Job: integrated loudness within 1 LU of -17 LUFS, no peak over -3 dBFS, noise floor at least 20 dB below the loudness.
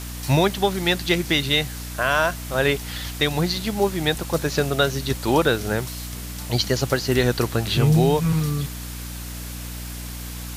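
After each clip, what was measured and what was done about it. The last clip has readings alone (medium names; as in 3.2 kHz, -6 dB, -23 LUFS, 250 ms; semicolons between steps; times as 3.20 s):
hum 60 Hz; highest harmonic 300 Hz; hum level -32 dBFS; noise floor -33 dBFS; noise floor target -42 dBFS; loudness -22.0 LUFS; peak level -5.5 dBFS; loudness target -17.0 LUFS
-> hum notches 60/120/180/240/300 Hz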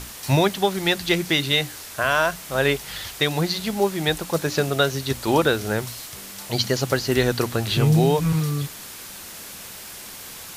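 hum not found; noise floor -39 dBFS; noise floor target -42 dBFS
-> noise reduction 6 dB, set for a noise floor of -39 dBFS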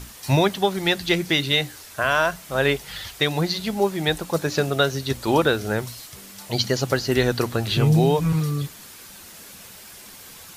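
noise floor -43 dBFS; loudness -22.0 LUFS; peak level -5.5 dBFS; loudness target -17.0 LUFS
-> trim +5 dB; peak limiter -3 dBFS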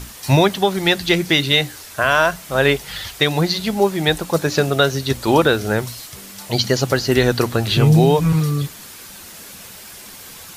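loudness -17.5 LUFS; peak level -3.0 dBFS; noise floor -38 dBFS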